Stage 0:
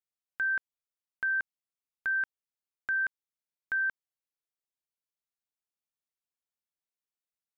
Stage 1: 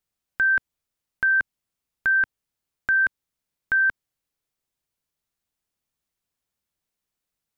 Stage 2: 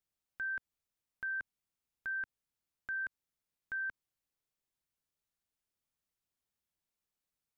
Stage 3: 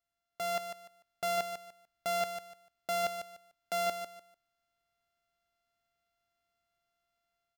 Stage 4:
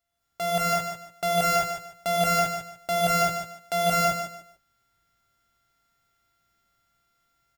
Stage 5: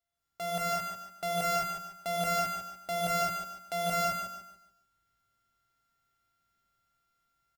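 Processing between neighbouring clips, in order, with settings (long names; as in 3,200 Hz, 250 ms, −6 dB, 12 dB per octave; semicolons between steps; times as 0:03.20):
low-shelf EQ 230 Hz +10.5 dB; level +9 dB
brickwall limiter −26.5 dBFS, peak gain reduction 11.5 dB; level −7 dB
samples sorted by size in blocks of 64 samples; automatic gain control gain up to 5 dB; on a send: repeating echo 148 ms, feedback 25%, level −8.5 dB
sub-octave generator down 2 octaves, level −1 dB; double-tracking delay 18 ms −11.5 dB; reverb whose tail is shaped and stops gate 240 ms rising, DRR −5 dB; level +6 dB
repeating echo 143 ms, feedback 32%, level −9 dB; level −7.5 dB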